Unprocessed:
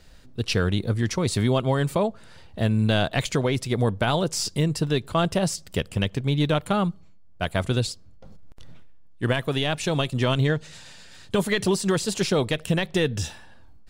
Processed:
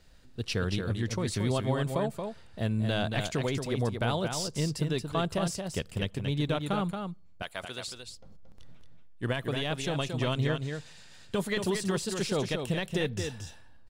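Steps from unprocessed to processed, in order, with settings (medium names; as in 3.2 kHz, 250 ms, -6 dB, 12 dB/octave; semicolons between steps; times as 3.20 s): 7.42–7.88 s: high-pass 1.1 kHz 6 dB/octave; delay 227 ms -6 dB; trim -7.5 dB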